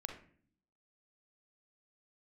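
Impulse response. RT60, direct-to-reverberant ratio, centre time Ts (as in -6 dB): 0.50 s, 3.5 dB, 21 ms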